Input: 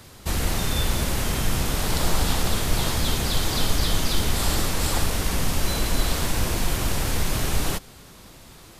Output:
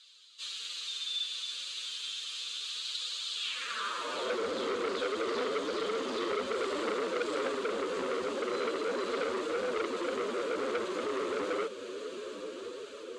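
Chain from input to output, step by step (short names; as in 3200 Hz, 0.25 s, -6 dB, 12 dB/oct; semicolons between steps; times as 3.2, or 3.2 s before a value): diffused feedback echo 0.685 s, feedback 45%, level -14.5 dB; time stretch by phase-locked vocoder 1.5×; tilt -3.5 dB/oct; fixed phaser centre 320 Hz, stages 4; high-pass sweep 3700 Hz -> 430 Hz, 3.33–4.4; speaker cabinet 120–7300 Hz, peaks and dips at 160 Hz -8 dB, 320 Hz -6 dB, 500 Hz +5 dB, 1200 Hz +6 dB, 2000 Hz -9 dB, 5400 Hz -10 dB; on a send: thin delay 0.684 s, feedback 77%, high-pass 1800 Hz, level -14 dB; on the sum: flange 0.31 Hz, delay 1.2 ms, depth 10 ms, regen -38%; in parallel at -2 dB: compressor, threshold -40 dBFS, peak gain reduction 14 dB; on the sum: core saturation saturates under 1800 Hz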